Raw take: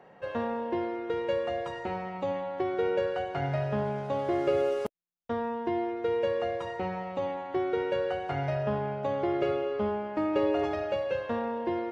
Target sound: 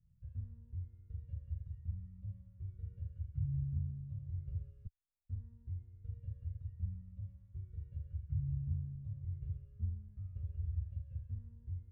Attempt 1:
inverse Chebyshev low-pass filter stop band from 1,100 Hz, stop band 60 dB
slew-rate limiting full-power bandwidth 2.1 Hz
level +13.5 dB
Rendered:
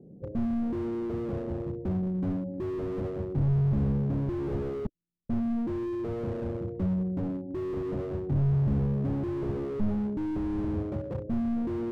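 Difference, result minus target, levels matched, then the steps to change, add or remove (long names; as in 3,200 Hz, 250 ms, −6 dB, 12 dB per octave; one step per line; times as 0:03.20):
250 Hz band +12.5 dB
change: inverse Chebyshev low-pass filter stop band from 290 Hz, stop band 60 dB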